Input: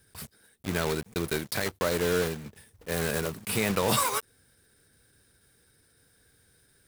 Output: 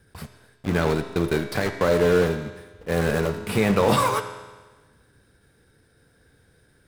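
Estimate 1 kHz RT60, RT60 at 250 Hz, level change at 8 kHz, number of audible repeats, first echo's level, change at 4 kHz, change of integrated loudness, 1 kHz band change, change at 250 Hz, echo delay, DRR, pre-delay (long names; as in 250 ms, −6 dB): 1.3 s, 1.3 s, −4.5 dB, no echo audible, no echo audible, +0.5 dB, +6.0 dB, +6.5 dB, +8.0 dB, no echo audible, 7.0 dB, 3 ms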